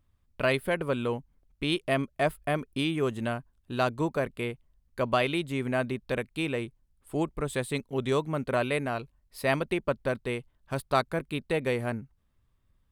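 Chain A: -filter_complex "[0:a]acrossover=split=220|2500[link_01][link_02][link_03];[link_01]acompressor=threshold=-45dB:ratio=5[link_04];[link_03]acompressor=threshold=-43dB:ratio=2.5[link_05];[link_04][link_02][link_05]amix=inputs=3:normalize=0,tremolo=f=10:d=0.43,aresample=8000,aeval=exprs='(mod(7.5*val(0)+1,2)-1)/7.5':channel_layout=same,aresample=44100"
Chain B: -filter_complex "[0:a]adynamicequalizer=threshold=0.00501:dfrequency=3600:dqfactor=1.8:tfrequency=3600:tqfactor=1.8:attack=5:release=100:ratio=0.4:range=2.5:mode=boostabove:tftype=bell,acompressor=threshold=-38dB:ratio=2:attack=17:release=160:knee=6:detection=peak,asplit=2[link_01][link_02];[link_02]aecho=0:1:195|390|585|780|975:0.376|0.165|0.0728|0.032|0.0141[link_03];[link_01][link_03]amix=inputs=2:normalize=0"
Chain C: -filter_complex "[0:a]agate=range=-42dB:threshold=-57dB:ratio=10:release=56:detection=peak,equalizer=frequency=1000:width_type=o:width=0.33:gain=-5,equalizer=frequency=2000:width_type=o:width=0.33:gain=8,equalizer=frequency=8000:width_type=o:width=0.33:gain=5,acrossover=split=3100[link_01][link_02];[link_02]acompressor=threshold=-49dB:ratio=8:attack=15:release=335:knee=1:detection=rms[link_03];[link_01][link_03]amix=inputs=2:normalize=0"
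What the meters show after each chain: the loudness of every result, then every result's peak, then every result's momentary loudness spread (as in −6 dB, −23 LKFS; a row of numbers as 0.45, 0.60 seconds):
−33.5, −36.0, −30.0 LKFS; −14.0, −19.0, −12.0 dBFS; 9, 7, 9 LU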